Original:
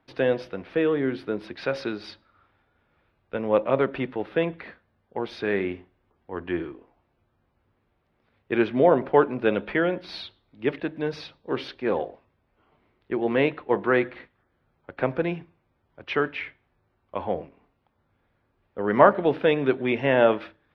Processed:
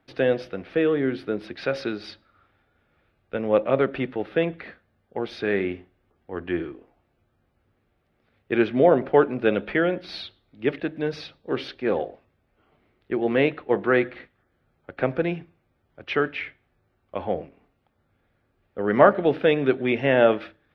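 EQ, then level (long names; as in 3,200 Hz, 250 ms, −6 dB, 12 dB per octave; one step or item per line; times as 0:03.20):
parametric band 980 Hz −8.5 dB 0.26 octaves
+1.5 dB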